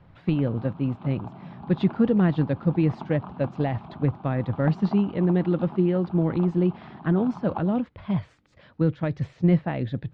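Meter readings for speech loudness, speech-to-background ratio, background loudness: -25.0 LUFS, 16.5 dB, -41.5 LUFS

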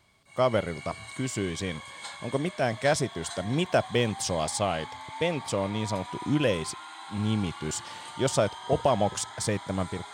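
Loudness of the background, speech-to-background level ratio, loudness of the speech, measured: -41.5 LUFS, 12.5 dB, -29.0 LUFS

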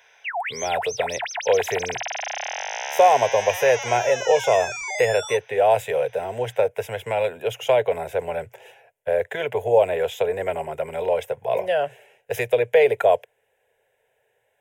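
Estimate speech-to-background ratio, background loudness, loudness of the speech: 6.5 dB, -29.0 LUFS, -22.5 LUFS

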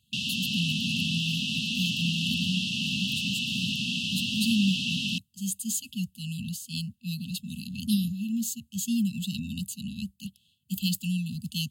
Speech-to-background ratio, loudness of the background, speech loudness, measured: -4.0 dB, -28.0 LUFS, -32.0 LUFS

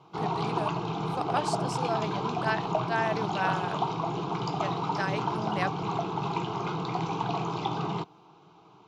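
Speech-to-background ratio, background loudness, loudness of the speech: -3.5 dB, -31.0 LUFS, -34.5 LUFS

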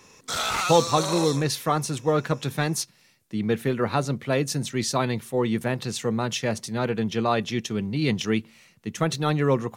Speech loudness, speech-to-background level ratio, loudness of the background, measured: -25.5 LUFS, 2.0 dB, -27.5 LUFS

